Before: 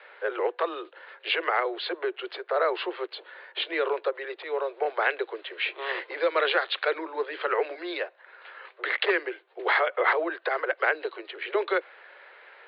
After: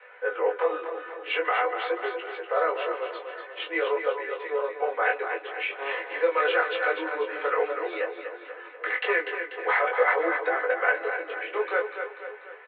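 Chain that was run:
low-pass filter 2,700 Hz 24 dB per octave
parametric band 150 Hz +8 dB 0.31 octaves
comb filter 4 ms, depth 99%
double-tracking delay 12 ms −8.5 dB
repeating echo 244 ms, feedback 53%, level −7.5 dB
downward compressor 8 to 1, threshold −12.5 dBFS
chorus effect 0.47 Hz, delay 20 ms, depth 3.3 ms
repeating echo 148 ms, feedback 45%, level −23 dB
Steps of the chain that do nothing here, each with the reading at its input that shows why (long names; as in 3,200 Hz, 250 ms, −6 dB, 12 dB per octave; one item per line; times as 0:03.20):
parametric band 150 Hz: nothing at its input below 290 Hz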